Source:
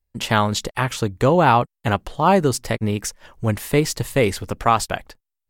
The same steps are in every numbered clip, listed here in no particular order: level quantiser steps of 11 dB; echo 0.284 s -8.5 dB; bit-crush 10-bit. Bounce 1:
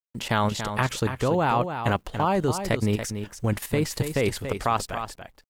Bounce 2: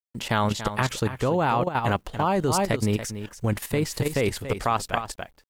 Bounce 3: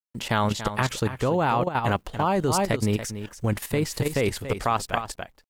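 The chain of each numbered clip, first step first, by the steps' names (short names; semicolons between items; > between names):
bit-crush > level quantiser > echo; echo > bit-crush > level quantiser; bit-crush > echo > level quantiser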